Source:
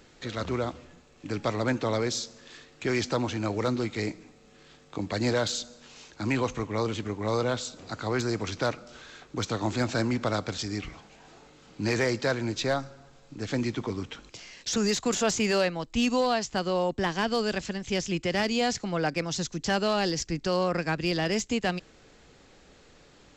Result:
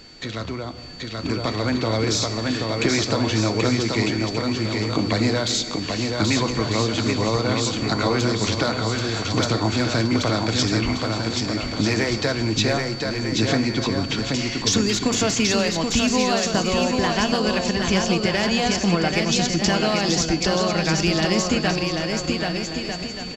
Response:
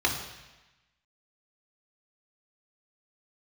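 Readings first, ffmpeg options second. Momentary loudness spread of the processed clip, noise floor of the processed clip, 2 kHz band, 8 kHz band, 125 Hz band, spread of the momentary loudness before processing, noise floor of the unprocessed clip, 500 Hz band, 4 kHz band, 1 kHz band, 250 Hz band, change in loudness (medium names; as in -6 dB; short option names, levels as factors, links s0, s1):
5 LU, -31 dBFS, +7.5 dB, +9.5 dB, +9.5 dB, 12 LU, -57 dBFS, +5.5 dB, +11.0 dB, +6.0 dB, +8.5 dB, +7.5 dB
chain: -filter_complex "[0:a]acompressor=threshold=0.02:ratio=6,aeval=exprs='val(0)+0.00224*sin(2*PI*4500*n/s)':c=same,aecho=1:1:780|1248|1529|1697|1798:0.631|0.398|0.251|0.158|0.1,asplit=2[s0][s1];[1:a]atrim=start_sample=2205[s2];[s1][s2]afir=irnorm=-1:irlink=0,volume=0.0944[s3];[s0][s3]amix=inputs=2:normalize=0,dynaudnorm=f=220:g=13:m=2.24,volume=2.24"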